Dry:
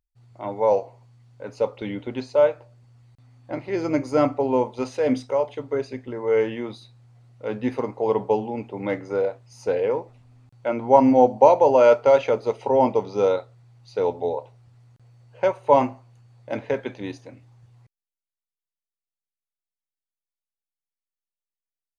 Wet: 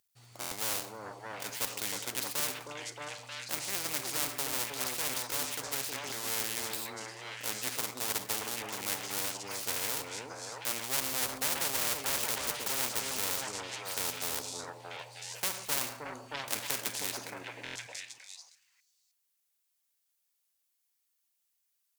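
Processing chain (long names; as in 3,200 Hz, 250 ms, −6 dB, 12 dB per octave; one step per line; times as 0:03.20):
gap after every zero crossing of 0.092 ms
on a send: echo through a band-pass that steps 312 ms, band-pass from 320 Hz, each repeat 1.4 octaves, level −1 dB
on the sum: tube saturation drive 14 dB, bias 0.6
high-pass filter 64 Hz
spectral tilt +3.5 dB per octave
rectangular room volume 2,100 cubic metres, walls furnished, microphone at 0.32 metres
buffer that repeats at 0:00.40/0:17.64, samples 1,024, times 4
every bin compressed towards the loudest bin 4 to 1
level −2.5 dB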